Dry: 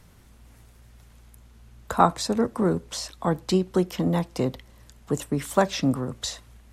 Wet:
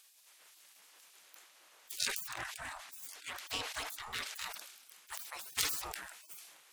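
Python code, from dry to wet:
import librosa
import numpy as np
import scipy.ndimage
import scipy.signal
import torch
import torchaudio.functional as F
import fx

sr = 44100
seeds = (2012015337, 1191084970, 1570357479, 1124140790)

y = fx.tracing_dist(x, sr, depth_ms=0.37)
y = fx.high_shelf(y, sr, hz=8700.0, db=-9.5, at=(2.05, 4.39))
y = fx.spec_gate(y, sr, threshold_db=-30, keep='weak')
y = fx.low_shelf(y, sr, hz=400.0, db=-4.0)
y = fx.sustainer(y, sr, db_per_s=52.0)
y = y * librosa.db_to_amplitude(4.0)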